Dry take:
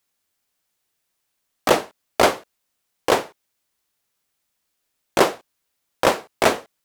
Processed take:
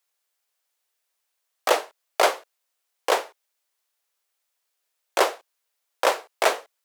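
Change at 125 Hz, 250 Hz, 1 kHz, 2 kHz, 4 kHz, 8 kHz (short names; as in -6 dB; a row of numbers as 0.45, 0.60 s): under -35 dB, -13.0 dB, -2.5 dB, -2.5 dB, -2.5 dB, -2.5 dB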